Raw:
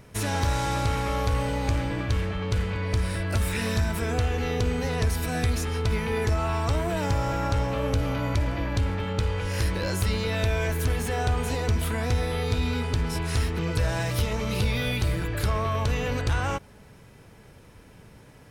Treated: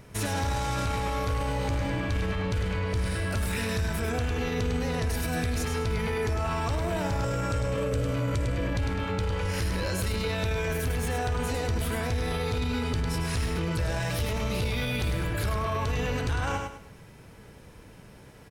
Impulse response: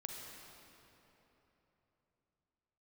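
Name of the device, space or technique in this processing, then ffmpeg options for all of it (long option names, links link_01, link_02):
clipper into limiter: -filter_complex "[0:a]asettb=1/sr,asplit=3[link_01][link_02][link_03];[link_01]atrim=end=7.244[link_04];[link_02]atrim=start=7.24:end=8.72,asetpts=PTS-STARTPTS,afade=type=in:duration=0.004:curve=qsin,afade=type=out:start_time=1.476:duration=0.004:curve=qsin,equalizer=frequency=125:width_type=o:width=0.33:gain=6,equalizer=frequency=500:width_type=o:width=0.33:gain=8,equalizer=frequency=800:width_type=o:width=0.33:gain=-10,equalizer=frequency=8000:width_type=o:width=0.33:gain=10[link_05];[link_03]atrim=start=8.716[link_06];[link_04][link_05]acrossfade=duration=0.004:curve1=hsin:curve2=qsin[link_07];[link_07][link_06]acrossfade=duration=0.004:curve1=qsin:curve2=hsin,aecho=1:1:102|204|306|408:0.501|0.155|0.0482|0.0149,asoftclip=type=hard:threshold=-14dB,alimiter=limit=-21dB:level=0:latency=1:release=15"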